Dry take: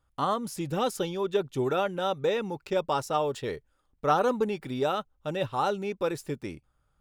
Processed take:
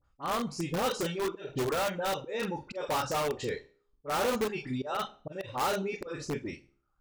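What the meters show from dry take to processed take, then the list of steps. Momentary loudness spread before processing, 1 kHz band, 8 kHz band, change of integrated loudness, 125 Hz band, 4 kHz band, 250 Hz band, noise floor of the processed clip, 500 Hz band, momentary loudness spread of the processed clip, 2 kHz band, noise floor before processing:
8 LU, -4.0 dB, +3.0 dB, -3.5 dB, -3.0 dB, 0.0 dB, -3.0 dB, -74 dBFS, -4.5 dB, 9 LU, +1.0 dB, -72 dBFS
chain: spectral trails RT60 0.40 s; notch 3400 Hz, Q 11; de-hum 68.25 Hz, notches 15; dispersion highs, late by 47 ms, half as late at 1600 Hz; auto swell 0.204 s; flutter echo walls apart 8 m, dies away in 0.28 s; reverb removal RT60 0.94 s; LPF 7200 Hz 24 dB/oct; in parallel at -4 dB: wrapped overs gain 24 dB; on the sum: gain -4 dB

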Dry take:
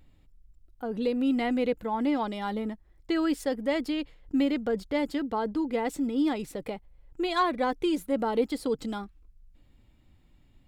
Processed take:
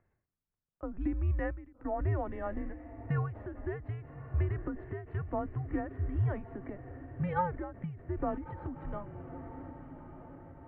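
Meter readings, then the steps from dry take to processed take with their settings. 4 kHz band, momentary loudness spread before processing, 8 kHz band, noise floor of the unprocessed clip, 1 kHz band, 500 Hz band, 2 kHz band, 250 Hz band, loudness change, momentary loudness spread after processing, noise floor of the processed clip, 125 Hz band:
under -30 dB, 10 LU, under -30 dB, -60 dBFS, -7.5 dB, -10.0 dB, -9.0 dB, -12.0 dB, -7.5 dB, 14 LU, under -85 dBFS, n/a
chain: mistuned SSB -190 Hz 210–2100 Hz; diffused feedback echo 1.132 s, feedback 52%, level -14 dB; ending taper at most 100 dB/s; gain -3.5 dB

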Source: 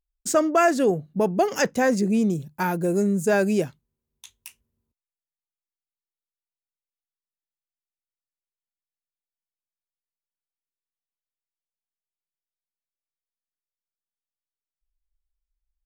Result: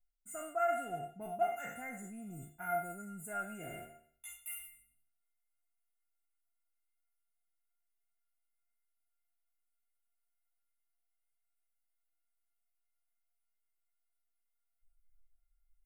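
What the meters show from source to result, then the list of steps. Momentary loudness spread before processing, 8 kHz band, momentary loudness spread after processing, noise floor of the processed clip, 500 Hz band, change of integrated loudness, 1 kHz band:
6 LU, -15.0 dB, 15 LU, -82 dBFS, -18.0 dB, -17.5 dB, -11.0 dB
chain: spectral trails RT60 0.61 s; ten-band EQ 250 Hz +5 dB, 500 Hz -7 dB, 2000 Hz +6 dB, 8000 Hz +11 dB; reverse; compressor 5:1, threshold -34 dBFS, peak gain reduction 19 dB; reverse; Butterworth band-stop 5000 Hz, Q 0.54; resonator 700 Hz, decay 0.2 s, harmonics all, mix 100%; gain +16.5 dB

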